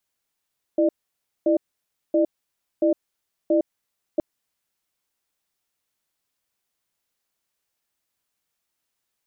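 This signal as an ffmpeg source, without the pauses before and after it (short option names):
-f lavfi -i "aevalsrc='0.119*(sin(2*PI*330*t)+sin(2*PI*601*t))*clip(min(mod(t,0.68),0.11-mod(t,0.68))/0.005,0,1)':d=3.42:s=44100"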